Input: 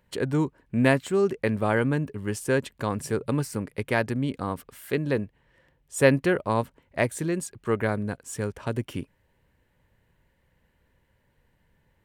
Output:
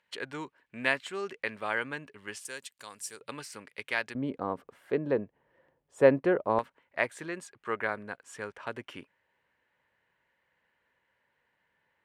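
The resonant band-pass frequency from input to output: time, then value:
resonant band-pass, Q 0.78
2,500 Hz
from 0:02.45 7,400 Hz
from 0:03.21 3,000 Hz
from 0:04.15 610 Hz
from 0:06.59 1,600 Hz

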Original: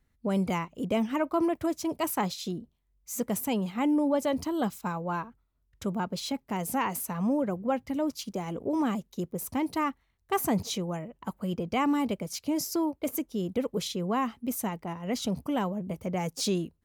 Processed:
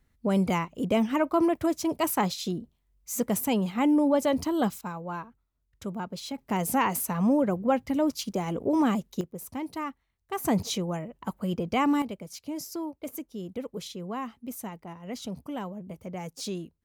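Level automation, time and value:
+3 dB
from 0:04.81 −3.5 dB
from 0:06.38 +4 dB
from 0:09.21 −5 dB
from 0:10.45 +2 dB
from 0:12.02 −6 dB

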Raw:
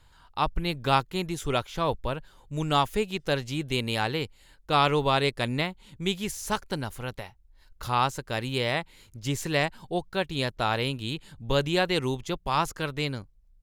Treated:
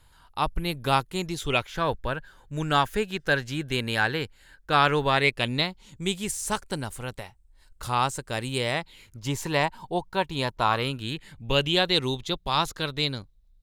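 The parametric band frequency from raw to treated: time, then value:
parametric band +12 dB 0.35 octaves
0:01.05 11,000 Hz
0:01.72 1,600 Hz
0:05.07 1,600 Hz
0:06.05 8,400 Hz
0:08.70 8,400 Hz
0:09.25 930 Hz
0:10.55 930 Hz
0:11.88 3,800 Hz

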